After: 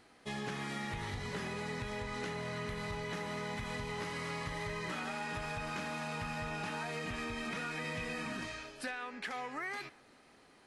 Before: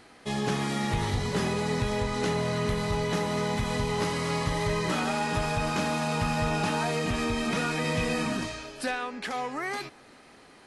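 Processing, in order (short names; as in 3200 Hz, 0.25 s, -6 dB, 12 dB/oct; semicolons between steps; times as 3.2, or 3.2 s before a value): dynamic EQ 1900 Hz, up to +7 dB, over -48 dBFS, Q 1; compressor, threshold -27 dBFS, peak gain reduction 6 dB; gain -9 dB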